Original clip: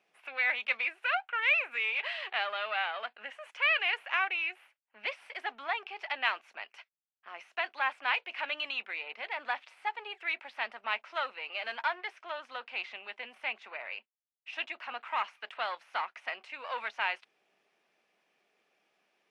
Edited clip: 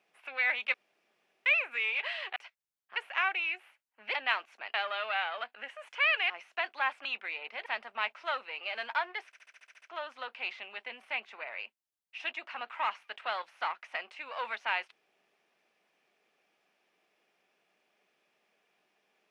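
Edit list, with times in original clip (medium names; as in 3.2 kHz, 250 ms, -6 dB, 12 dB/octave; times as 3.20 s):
0.74–1.46 s: room tone
2.36–3.92 s: swap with 6.70–7.30 s
5.10–6.10 s: delete
8.05–8.70 s: delete
9.31–10.55 s: delete
12.15 s: stutter 0.07 s, 9 plays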